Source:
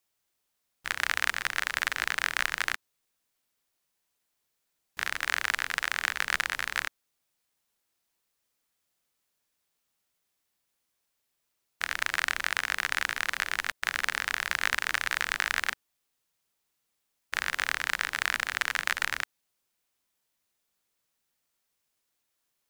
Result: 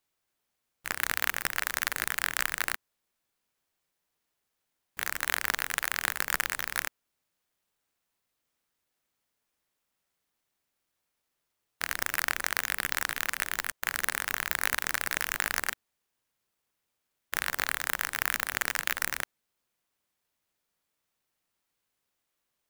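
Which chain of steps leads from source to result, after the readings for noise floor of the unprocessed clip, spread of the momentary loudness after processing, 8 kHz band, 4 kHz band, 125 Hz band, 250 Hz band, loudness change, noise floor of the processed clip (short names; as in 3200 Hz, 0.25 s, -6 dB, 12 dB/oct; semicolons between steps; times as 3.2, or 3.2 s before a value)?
-80 dBFS, 7 LU, +4.0 dB, -2.5 dB, +3.0 dB, +4.0 dB, -1.0 dB, -82 dBFS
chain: clock jitter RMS 0.057 ms; gain -1 dB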